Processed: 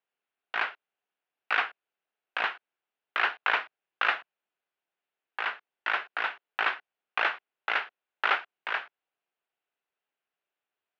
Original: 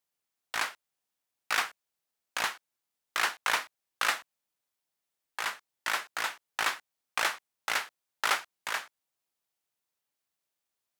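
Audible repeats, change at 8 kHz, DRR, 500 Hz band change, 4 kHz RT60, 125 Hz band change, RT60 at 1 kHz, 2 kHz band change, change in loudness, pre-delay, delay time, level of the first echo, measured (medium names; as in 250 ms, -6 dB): no echo, under -25 dB, no reverb, +2.5 dB, no reverb, no reading, no reverb, +3.0 dB, +1.5 dB, no reverb, no echo, no echo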